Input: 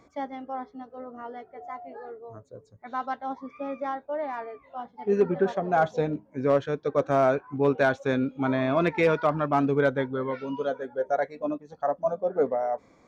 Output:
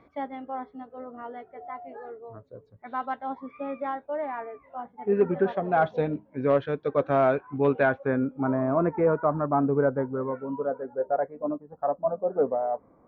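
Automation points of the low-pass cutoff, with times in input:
low-pass 24 dB/octave
4.08 s 3.4 kHz
4.51 s 2.3 kHz
5.02 s 2.3 kHz
5.60 s 3.6 kHz
7.74 s 3.6 kHz
7.97 s 2.1 kHz
8.58 s 1.3 kHz

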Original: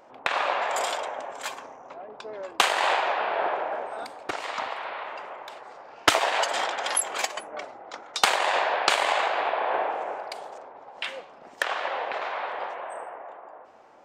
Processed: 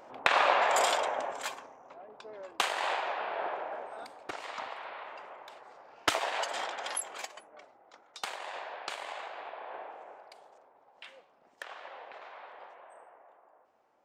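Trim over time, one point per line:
1.26 s +1 dB
1.70 s -8.5 dB
6.86 s -8.5 dB
7.55 s -17 dB

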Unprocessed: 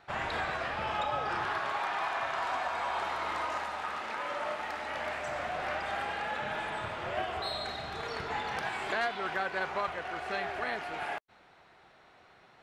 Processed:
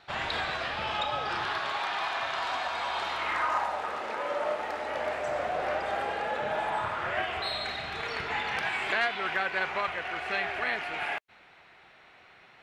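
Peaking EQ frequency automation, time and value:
peaking EQ +9 dB 1.2 oct
3.11 s 3.8 kHz
3.83 s 490 Hz
6.44 s 490 Hz
7.32 s 2.4 kHz

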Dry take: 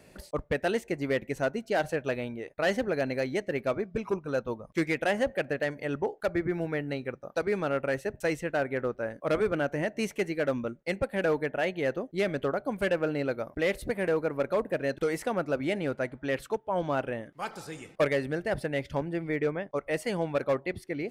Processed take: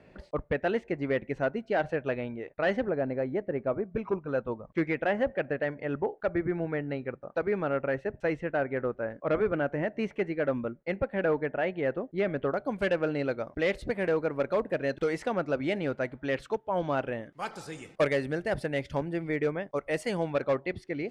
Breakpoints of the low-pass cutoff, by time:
2.6 kHz
from 2.89 s 1.2 kHz
from 3.92 s 2.2 kHz
from 12.54 s 5.6 kHz
from 17.32 s 10 kHz
from 20.30 s 5.6 kHz

